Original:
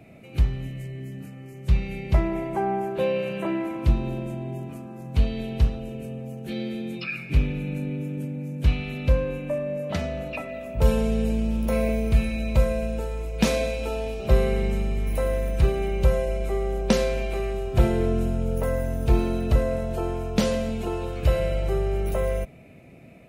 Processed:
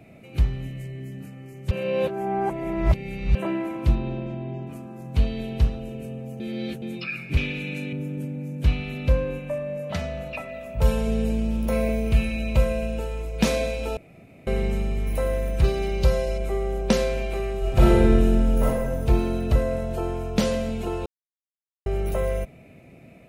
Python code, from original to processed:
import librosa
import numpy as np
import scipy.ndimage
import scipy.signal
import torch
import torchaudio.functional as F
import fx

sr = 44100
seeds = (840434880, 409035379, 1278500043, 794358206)

y = fx.lowpass(x, sr, hz=4700.0, slope=24, at=(3.95, 4.67))
y = fx.weighting(y, sr, curve='D', at=(7.37, 7.93))
y = fx.peak_eq(y, sr, hz=320.0, db=-8.5, octaves=0.77, at=(9.39, 11.07))
y = fx.peak_eq(y, sr, hz=2800.0, db=6.5, octaves=0.32, at=(12.06, 13.22))
y = fx.peak_eq(y, sr, hz=4700.0, db=12.5, octaves=0.73, at=(15.64, 16.38))
y = fx.reverb_throw(y, sr, start_s=17.59, length_s=1.07, rt60_s=1.2, drr_db=-5.0)
y = fx.edit(y, sr, fx.reverse_span(start_s=1.71, length_s=1.64),
    fx.reverse_span(start_s=6.4, length_s=0.42),
    fx.room_tone_fill(start_s=13.97, length_s=0.5),
    fx.silence(start_s=21.06, length_s=0.8), tone=tone)